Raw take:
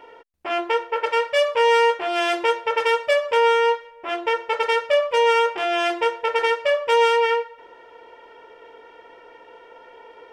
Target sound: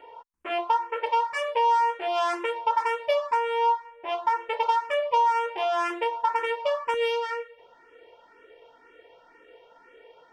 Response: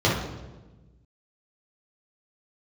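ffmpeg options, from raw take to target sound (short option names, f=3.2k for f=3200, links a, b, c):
-filter_complex "[0:a]asetnsamples=n=441:p=0,asendcmd='6.94 equalizer g -5',equalizer=f=970:w=2.9:g=12.5,acompressor=threshold=-13dB:ratio=6,asplit=2[a][b];[b]afreqshift=2[c];[a][c]amix=inputs=2:normalize=1,volume=-4dB"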